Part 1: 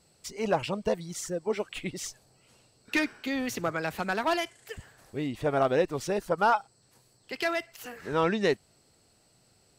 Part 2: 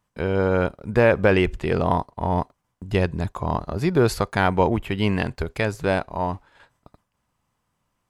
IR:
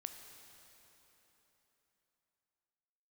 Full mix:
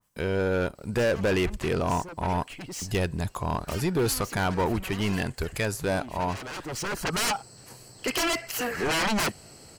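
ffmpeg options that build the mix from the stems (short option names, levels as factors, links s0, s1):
-filter_complex "[0:a]aeval=exprs='0.2*sin(PI/2*7.08*val(0)/0.2)':c=same,bandreject=f=3600:w=7.3,asoftclip=type=tanh:threshold=0.168,adelay=750,volume=0.531[s0];[1:a]aemphasis=mode=production:type=75kf,asoftclip=type=tanh:threshold=0.133,adynamicequalizer=threshold=0.0126:dfrequency=2000:dqfactor=0.7:tfrequency=2000:tqfactor=0.7:attack=5:release=100:ratio=0.375:range=1.5:mode=cutabove:tftype=highshelf,volume=0.794,asplit=2[s1][s2];[s2]apad=whole_len=464766[s3];[s0][s3]sidechaincompress=threshold=0.0112:ratio=16:attack=44:release=902[s4];[s4][s1]amix=inputs=2:normalize=0"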